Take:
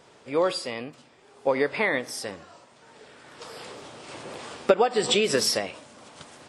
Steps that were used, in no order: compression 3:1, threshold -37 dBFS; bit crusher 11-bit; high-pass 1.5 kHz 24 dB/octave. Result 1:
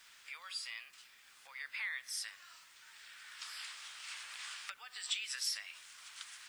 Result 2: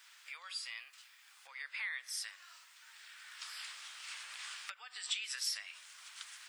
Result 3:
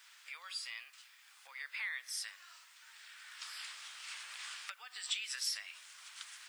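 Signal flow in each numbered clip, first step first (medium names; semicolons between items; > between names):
compression > high-pass > bit crusher; bit crusher > compression > high-pass; compression > bit crusher > high-pass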